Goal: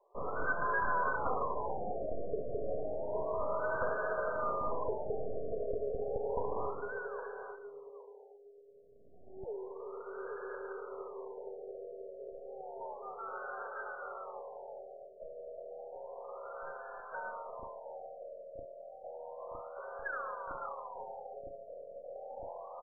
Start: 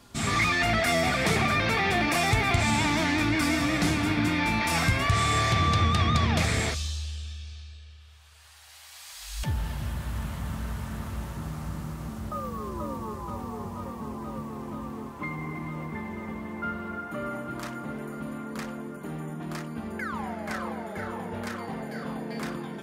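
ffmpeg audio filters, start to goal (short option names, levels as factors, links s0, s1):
-filter_complex "[0:a]asplit=2[s0][s1];[s1]acrusher=bits=6:mix=0:aa=0.000001,volume=0.422[s2];[s0][s2]amix=inputs=2:normalize=0,afreqshift=330,aderivative,asplit=2[s3][s4];[s4]adelay=814,lowpass=f=920:p=1,volume=0.501,asplit=2[s5][s6];[s6]adelay=814,lowpass=f=920:p=1,volume=0.31,asplit=2[s7][s8];[s8]adelay=814,lowpass=f=920:p=1,volume=0.31,asplit=2[s9][s10];[s10]adelay=814,lowpass=f=920:p=1,volume=0.31[s11];[s5][s7][s9][s11]amix=inputs=4:normalize=0[s12];[s3][s12]amix=inputs=2:normalize=0,aeval=exprs='0.168*(cos(1*acos(clip(val(0)/0.168,-1,1)))-cos(1*PI/2))+0.015*(cos(6*acos(clip(val(0)/0.168,-1,1)))-cos(6*PI/2))':c=same,afftfilt=real='re*lt(b*sr/1024,690*pow(1700/690,0.5+0.5*sin(2*PI*0.31*pts/sr)))':imag='im*lt(b*sr/1024,690*pow(1700/690,0.5+0.5*sin(2*PI*0.31*pts/sr)))':win_size=1024:overlap=0.75,volume=2.51"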